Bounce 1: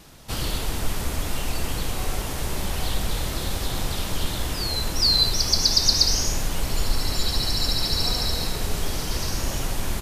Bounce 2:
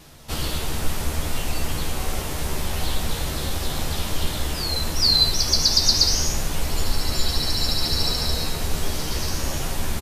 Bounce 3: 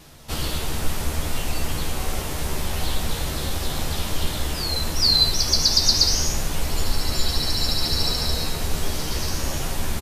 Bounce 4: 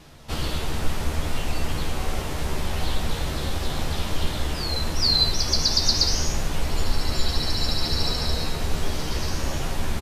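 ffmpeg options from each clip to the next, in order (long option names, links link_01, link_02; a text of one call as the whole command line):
ffmpeg -i in.wav -filter_complex "[0:a]asplit=2[link_01][link_02];[link_02]adelay=13,volume=-5dB[link_03];[link_01][link_03]amix=inputs=2:normalize=0" out.wav
ffmpeg -i in.wav -af anull out.wav
ffmpeg -i in.wav -af "highshelf=frequency=7000:gain=-11" out.wav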